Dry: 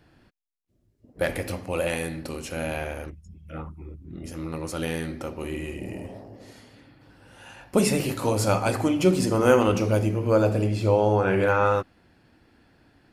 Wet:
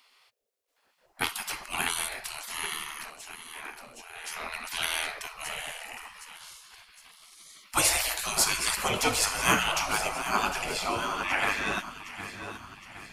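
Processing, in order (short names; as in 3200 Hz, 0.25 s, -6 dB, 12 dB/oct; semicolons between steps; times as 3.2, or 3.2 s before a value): split-band echo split 380 Hz, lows 0.201 s, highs 0.764 s, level -12.5 dB; spectral gate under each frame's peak -20 dB weak; 3.6–5.19 dynamic EQ 2400 Hz, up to +4 dB, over -52 dBFS, Q 0.76; gain +8.5 dB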